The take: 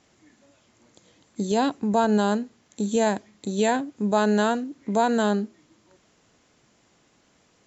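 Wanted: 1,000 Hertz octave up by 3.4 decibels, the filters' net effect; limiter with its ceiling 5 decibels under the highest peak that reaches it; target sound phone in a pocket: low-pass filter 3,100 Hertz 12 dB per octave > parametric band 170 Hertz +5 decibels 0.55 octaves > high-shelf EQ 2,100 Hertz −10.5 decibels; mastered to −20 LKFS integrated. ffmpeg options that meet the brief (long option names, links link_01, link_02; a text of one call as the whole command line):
ffmpeg -i in.wav -af "equalizer=frequency=1000:width_type=o:gain=6.5,alimiter=limit=-11dB:level=0:latency=1,lowpass=3100,equalizer=frequency=170:width_type=o:width=0.55:gain=5,highshelf=frequency=2100:gain=-10.5,volume=3.5dB" out.wav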